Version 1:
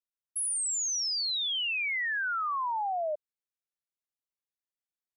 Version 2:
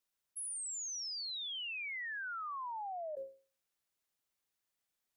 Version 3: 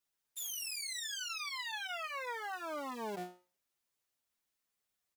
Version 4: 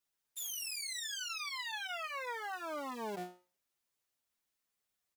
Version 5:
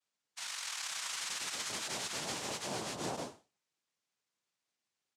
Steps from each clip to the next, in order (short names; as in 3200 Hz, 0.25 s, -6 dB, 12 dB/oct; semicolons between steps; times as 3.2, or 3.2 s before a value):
expander -23 dBFS; notches 60/120/180/240/300/360/420/480/540 Hz; fast leveller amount 100%; gain +1 dB
cycle switcher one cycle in 3, inverted; endless flanger 7.8 ms -2.2 Hz; gain +3.5 dB
nothing audible
noise vocoder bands 2; gain +1.5 dB